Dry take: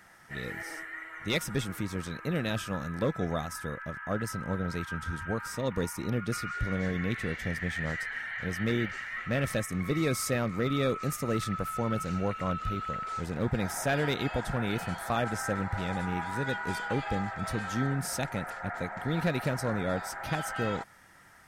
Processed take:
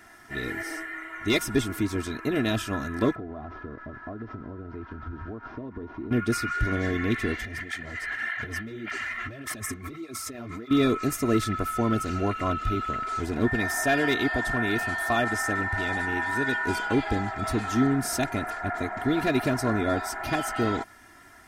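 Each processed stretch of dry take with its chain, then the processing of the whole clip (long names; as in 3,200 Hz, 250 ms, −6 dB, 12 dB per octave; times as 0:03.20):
0:03.15–0:06.11: variable-slope delta modulation 32 kbit/s + low-pass filter 1,100 Hz + downward compressor 12 to 1, threshold −37 dBFS
0:07.43–0:10.71: compressor whose output falls as the input rises −38 dBFS + through-zero flanger with one copy inverted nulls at 1.7 Hz, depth 7.8 ms
0:13.45–0:16.65: low-shelf EQ 490 Hz −4.5 dB + steady tone 1,800 Hz −35 dBFS
whole clip: parametric band 230 Hz +6 dB 1.3 octaves; comb filter 2.9 ms, depth 82%; level +2.5 dB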